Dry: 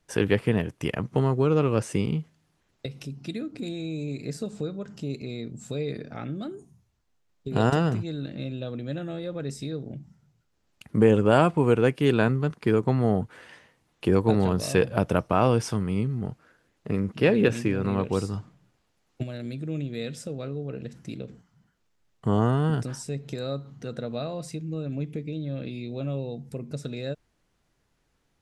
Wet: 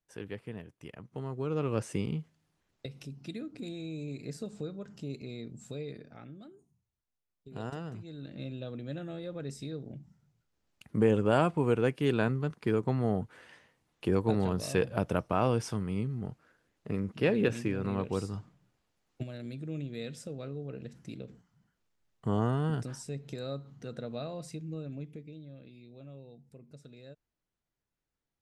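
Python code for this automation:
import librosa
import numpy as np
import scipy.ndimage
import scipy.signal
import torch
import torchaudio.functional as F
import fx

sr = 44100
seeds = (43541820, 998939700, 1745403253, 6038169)

y = fx.gain(x, sr, db=fx.line((1.04, -18.5), (1.74, -7.0), (5.59, -7.0), (6.52, -17.0), (7.86, -17.0), (8.43, -6.5), (24.71, -6.5), (25.63, -18.0)))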